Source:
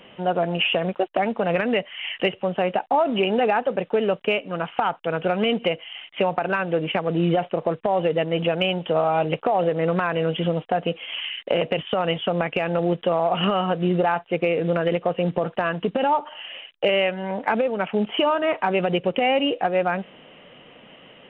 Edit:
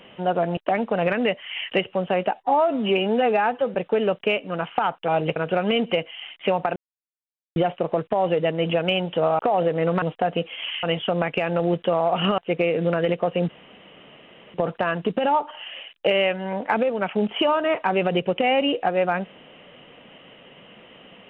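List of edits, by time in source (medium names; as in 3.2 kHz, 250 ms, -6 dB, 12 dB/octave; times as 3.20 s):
0.57–1.05 s: delete
2.82–3.76 s: stretch 1.5×
6.49–7.29 s: mute
9.12–9.40 s: move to 5.09 s
10.03–10.52 s: delete
11.33–12.02 s: delete
13.57–14.21 s: delete
15.32 s: insert room tone 1.05 s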